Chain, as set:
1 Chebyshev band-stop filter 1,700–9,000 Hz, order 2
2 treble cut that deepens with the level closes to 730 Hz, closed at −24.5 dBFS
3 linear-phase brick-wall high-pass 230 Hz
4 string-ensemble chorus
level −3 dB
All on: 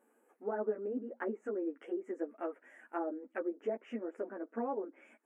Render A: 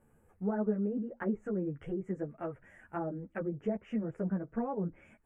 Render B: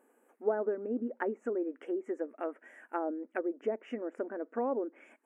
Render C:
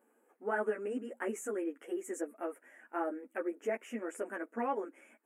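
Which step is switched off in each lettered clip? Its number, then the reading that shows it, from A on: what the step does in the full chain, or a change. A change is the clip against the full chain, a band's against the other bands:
3, 250 Hz band +6.5 dB
4, change in crest factor +2.0 dB
2, 2 kHz band +6.5 dB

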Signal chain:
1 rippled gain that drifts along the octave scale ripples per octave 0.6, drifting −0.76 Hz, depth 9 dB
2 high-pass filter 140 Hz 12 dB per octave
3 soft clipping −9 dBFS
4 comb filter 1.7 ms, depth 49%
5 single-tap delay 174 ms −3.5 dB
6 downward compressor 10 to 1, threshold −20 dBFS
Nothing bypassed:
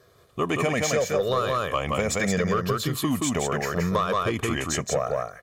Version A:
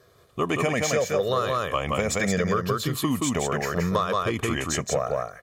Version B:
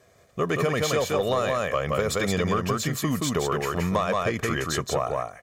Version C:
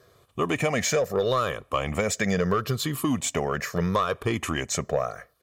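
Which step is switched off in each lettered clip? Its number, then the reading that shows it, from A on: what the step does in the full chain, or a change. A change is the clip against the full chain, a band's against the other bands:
3, distortion level −21 dB
1, 8 kHz band −2.5 dB
5, change in momentary loudness spread +1 LU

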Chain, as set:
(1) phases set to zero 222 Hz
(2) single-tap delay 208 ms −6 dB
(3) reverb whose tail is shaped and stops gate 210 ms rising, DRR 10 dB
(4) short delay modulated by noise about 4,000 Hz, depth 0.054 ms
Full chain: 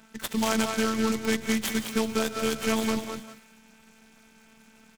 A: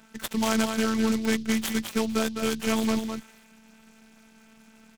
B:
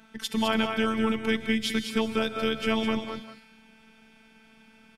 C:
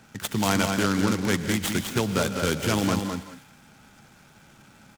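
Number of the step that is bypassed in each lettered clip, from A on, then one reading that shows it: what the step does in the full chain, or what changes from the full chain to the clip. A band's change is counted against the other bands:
3, change in momentary loudness spread −1 LU
4, 8 kHz band −10.0 dB
1, 125 Hz band +9.5 dB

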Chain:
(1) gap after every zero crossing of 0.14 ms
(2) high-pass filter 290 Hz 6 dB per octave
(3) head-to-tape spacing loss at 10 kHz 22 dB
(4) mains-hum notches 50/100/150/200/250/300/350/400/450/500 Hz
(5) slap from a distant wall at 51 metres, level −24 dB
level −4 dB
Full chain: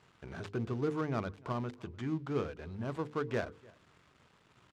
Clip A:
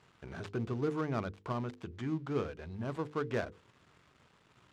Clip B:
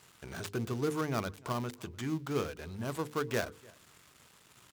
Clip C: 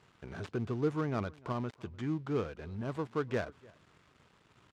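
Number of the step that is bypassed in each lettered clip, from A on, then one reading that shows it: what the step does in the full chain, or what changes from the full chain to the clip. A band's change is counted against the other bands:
5, echo-to-direct ratio −25.0 dB to none audible
3, 4 kHz band +7.0 dB
4, change in crest factor −1.5 dB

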